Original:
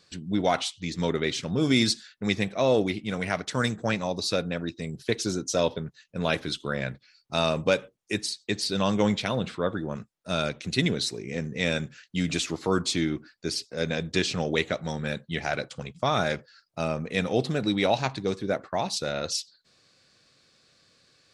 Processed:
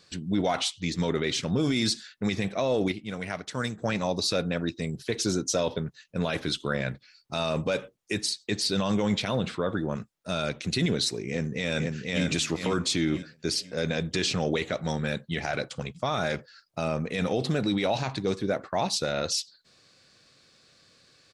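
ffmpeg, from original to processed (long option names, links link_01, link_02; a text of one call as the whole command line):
ffmpeg -i in.wav -filter_complex "[0:a]asplit=2[link_01][link_02];[link_02]afade=type=in:start_time=11.29:duration=0.01,afade=type=out:start_time=12.24:duration=0.01,aecho=0:1:490|980|1470|1960:0.630957|0.189287|0.0567862|0.0170358[link_03];[link_01][link_03]amix=inputs=2:normalize=0,asplit=3[link_04][link_05][link_06];[link_04]atrim=end=2.922[link_07];[link_05]atrim=start=2.918:end=3.822,asetpts=PTS-STARTPTS,volume=-7dB[link_08];[link_06]atrim=start=3.818[link_09];[link_07][link_08]acrossfade=duration=0.004:curve1=hsin:curve2=hsin[link_10];[link_10][link_09]acrossfade=duration=0.004:curve1=hsin:curve2=hsin,alimiter=limit=-19dB:level=0:latency=1:release=19,volume=2.5dB" out.wav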